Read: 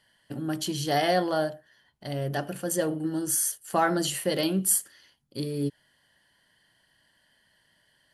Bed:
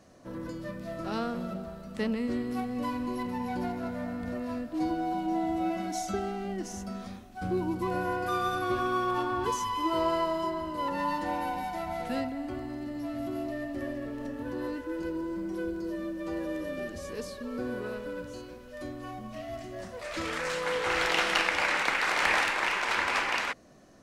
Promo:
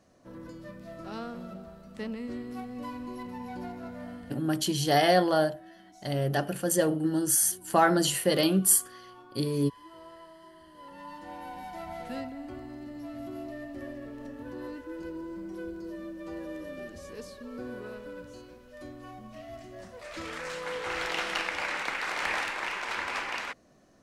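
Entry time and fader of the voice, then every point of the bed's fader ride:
4.00 s, +2.0 dB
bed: 0:04.14 −6 dB
0:04.60 −21.5 dB
0:10.46 −21.5 dB
0:11.81 −5 dB

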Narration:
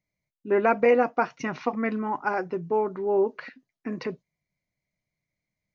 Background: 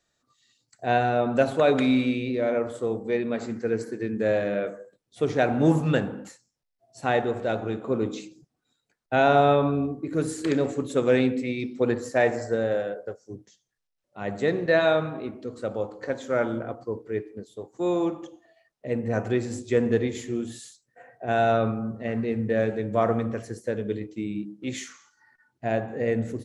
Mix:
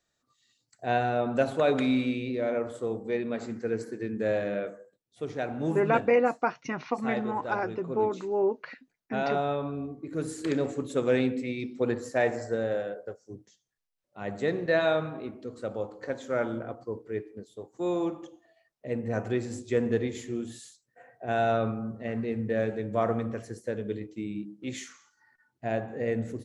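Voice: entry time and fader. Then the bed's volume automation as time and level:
5.25 s, −3.0 dB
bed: 0:04.56 −4 dB
0:05.08 −10 dB
0:09.68 −10 dB
0:10.48 −4 dB

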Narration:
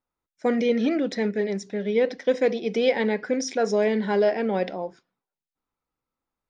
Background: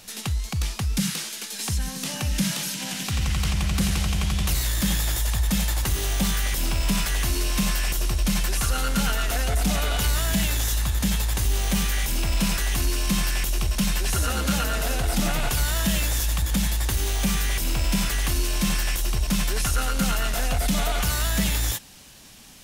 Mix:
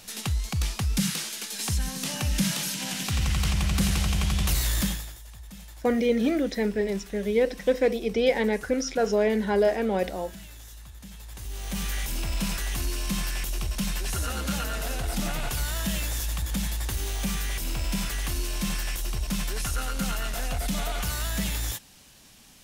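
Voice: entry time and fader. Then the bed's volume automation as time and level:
5.40 s, −1.0 dB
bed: 0:04.81 −1 dB
0:05.19 −21 dB
0:11.12 −21 dB
0:11.89 −5.5 dB

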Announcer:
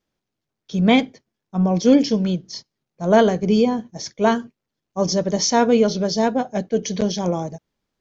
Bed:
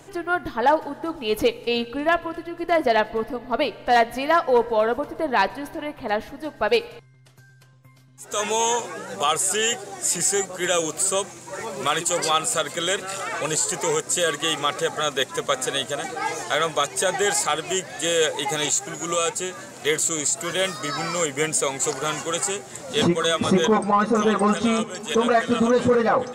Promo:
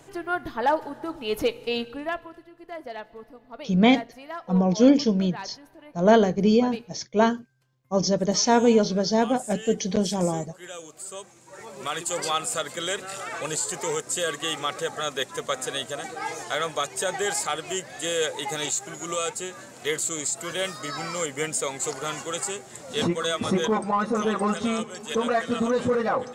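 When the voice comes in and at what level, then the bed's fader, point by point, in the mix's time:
2.95 s, −2.5 dB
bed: 0:01.80 −4 dB
0:02.55 −17.5 dB
0:10.90 −17.5 dB
0:12.18 −5 dB

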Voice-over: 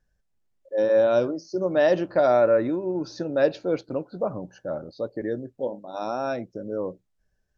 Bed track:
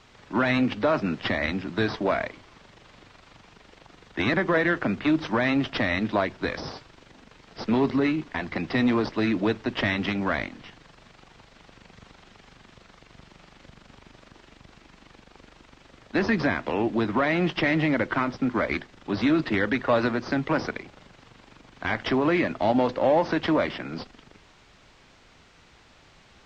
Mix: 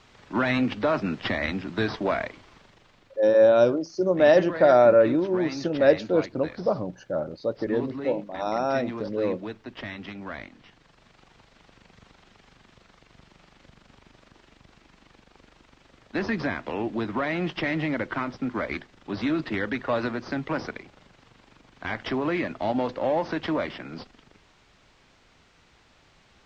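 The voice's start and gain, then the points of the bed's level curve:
2.45 s, +2.5 dB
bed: 0:02.51 −1 dB
0:03.22 −11.5 dB
0:10.17 −11.5 dB
0:11.22 −4 dB

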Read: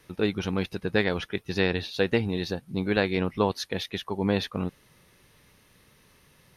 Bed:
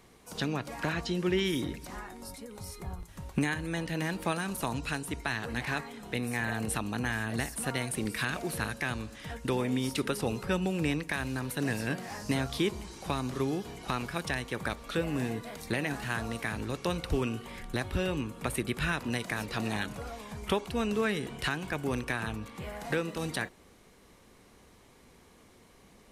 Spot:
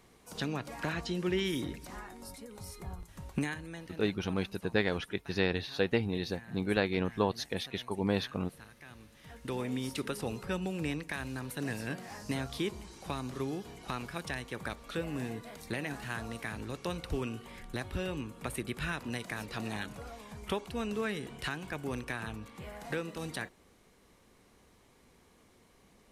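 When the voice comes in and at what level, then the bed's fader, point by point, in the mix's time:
3.80 s, −5.0 dB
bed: 0:03.36 −3 dB
0:04.20 −20 dB
0:08.82 −20 dB
0:09.61 −5 dB

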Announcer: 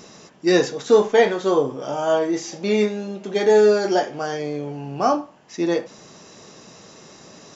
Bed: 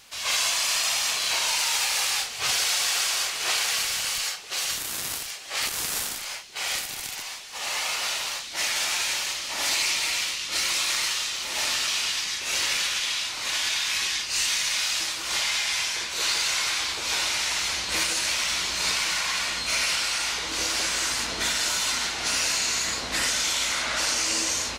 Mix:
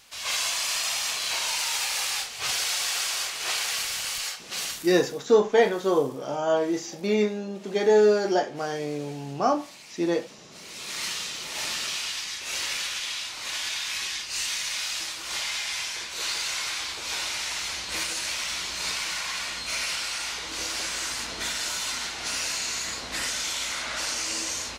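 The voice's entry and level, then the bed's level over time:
4.40 s, −4.0 dB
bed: 0:04.66 −3 dB
0:05.20 −23 dB
0:10.54 −23 dB
0:11.04 −4.5 dB

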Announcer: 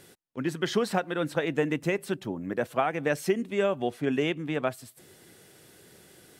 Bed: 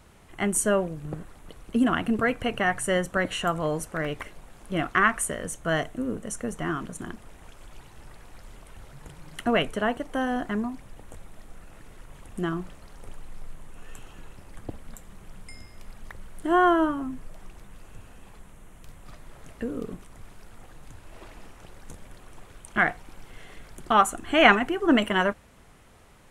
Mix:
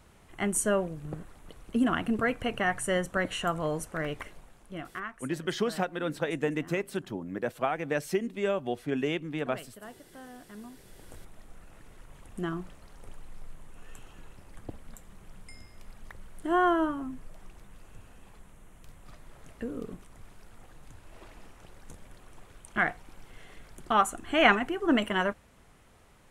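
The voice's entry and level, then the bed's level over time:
4.85 s, −3.0 dB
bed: 0:04.34 −3.5 dB
0:05.19 −20.5 dB
0:10.46 −20.5 dB
0:11.09 −4.5 dB

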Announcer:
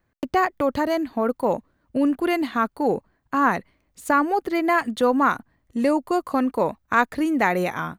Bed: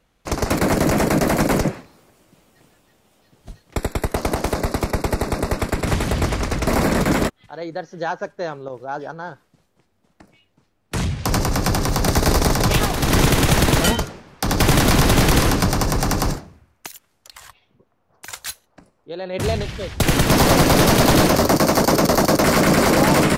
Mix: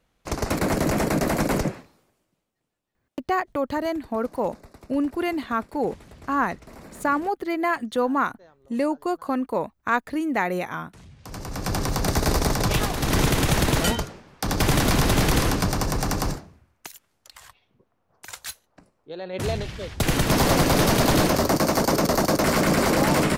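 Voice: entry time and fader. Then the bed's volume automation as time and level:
2.95 s, −3.5 dB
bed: 0:01.81 −5 dB
0:02.54 −26 dB
0:11.04 −26 dB
0:11.77 −5 dB

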